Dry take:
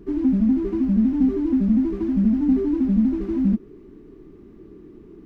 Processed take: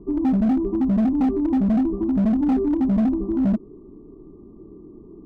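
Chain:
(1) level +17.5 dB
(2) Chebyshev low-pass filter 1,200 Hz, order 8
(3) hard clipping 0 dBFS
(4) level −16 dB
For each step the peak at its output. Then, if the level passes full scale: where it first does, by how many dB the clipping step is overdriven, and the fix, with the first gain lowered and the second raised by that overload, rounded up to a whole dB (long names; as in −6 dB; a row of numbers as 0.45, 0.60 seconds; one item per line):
+7.5, +7.5, 0.0, −16.0 dBFS
step 1, 7.5 dB
step 1 +9.5 dB, step 4 −8 dB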